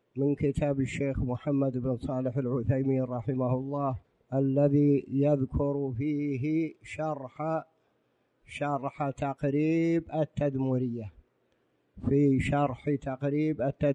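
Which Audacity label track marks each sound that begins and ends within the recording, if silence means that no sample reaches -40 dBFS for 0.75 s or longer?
8.510000	11.080000	sound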